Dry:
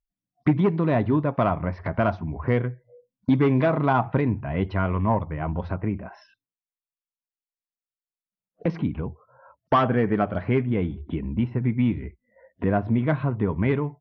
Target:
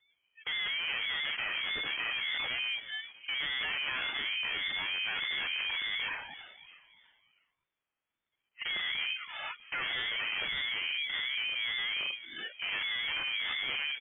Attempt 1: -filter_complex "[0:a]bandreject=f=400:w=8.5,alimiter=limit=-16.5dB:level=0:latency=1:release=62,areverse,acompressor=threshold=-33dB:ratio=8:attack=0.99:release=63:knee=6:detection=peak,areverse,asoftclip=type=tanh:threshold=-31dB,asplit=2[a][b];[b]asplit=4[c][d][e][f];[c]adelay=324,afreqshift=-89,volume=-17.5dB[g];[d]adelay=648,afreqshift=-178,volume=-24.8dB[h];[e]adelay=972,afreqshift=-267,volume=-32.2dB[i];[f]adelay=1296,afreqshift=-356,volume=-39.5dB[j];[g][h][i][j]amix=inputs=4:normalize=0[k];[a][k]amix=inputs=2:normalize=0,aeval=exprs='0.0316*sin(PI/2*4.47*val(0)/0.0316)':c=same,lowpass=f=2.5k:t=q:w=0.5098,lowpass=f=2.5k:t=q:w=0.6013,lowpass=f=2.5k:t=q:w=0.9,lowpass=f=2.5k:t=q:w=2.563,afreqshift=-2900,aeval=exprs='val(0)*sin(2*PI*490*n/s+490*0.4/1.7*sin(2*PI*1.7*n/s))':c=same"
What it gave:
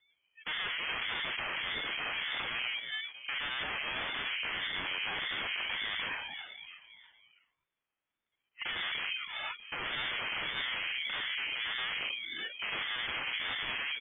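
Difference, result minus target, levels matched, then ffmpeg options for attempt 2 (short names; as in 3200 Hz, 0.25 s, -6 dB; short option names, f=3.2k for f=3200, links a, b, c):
soft clip: distortion -12 dB
-filter_complex "[0:a]bandreject=f=400:w=8.5,alimiter=limit=-16.5dB:level=0:latency=1:release=62,areverse,acompressor=threshold=-33dB:ratio=8:attack=0.99:release=63:knee=6:detection=peak,areverse,asoftclip=type=tanh:threshold=-43dB,asplit=2[a][b];[b]asplit=4[c][d][e][f];[c]adelay=324,afreqshift=-89,volume=-17.5dB[g];[d]adelay=648,afreqshift=-178,volume=-24.8dB[h];[e]adelay=972,afreqshift=-267,volume=-32.2dB[i];[f]adelay=1296,afreqshift=-356,volume=-39.5dB[j];[g][h][i][j]amix=inputs=4:normalize=0[k];[a][k]amix=inputs=2:normalize=0,aeval=exprs='0.0316*sin(PI/2*4.47*val(0)/0.0316)':c=same,lowpass=f=2.5k:t=q:w=0.5098,lowpass=f=2.5k:t=q:w=0.6013,lowpass=f=2.5k:t=q:w=0.9,lowpass=f=2.5k:t=q:w=2.563,afreqshift=-2900,aeval=exprs='val(0)*sin(2*PI*490*n/s+490*0.4/1.7*sin(2*PI*1.7*n/s))':c=same"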